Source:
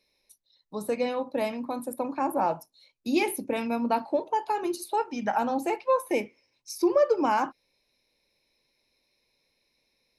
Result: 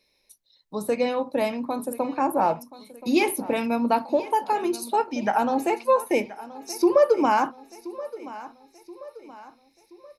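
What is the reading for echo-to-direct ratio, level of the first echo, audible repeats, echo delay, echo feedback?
-16.0 dB, -17.0 dB, 3, 1027 ms, 45%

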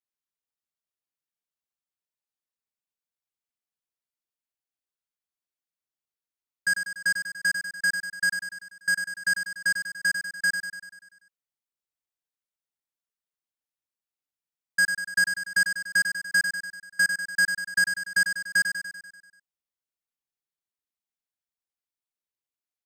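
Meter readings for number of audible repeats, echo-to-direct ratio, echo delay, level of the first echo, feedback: 7, -5.0 dB, 97 ms, -7.0 dB, 59%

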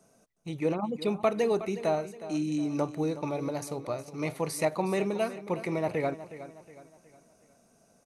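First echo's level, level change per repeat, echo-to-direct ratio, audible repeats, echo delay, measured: -14.0 dB, -8.0 dB, -13.0 dB, 3, 365 ms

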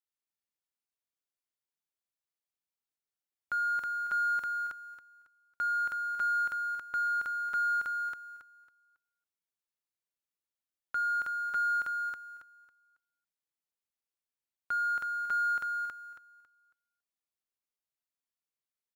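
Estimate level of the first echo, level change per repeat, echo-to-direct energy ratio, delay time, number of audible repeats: -3.0 dB, -11.5 dB, -2.5 dB, 275 ms, 3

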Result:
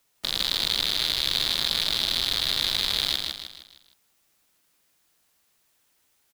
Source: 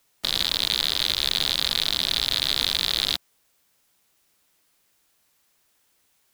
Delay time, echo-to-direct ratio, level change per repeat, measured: 155 ms, -3.0 dB, -7.5 dB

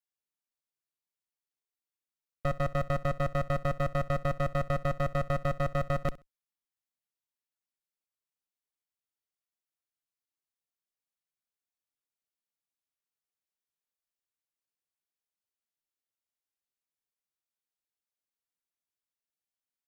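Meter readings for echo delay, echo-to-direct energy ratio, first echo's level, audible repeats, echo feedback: 65 ms, -19.5 dB, -19.5 dB, 2, 21%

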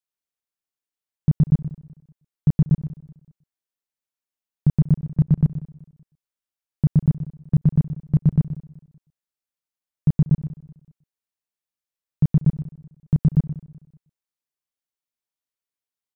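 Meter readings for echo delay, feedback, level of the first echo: 125 ms, no regular repeats, -13.0 dB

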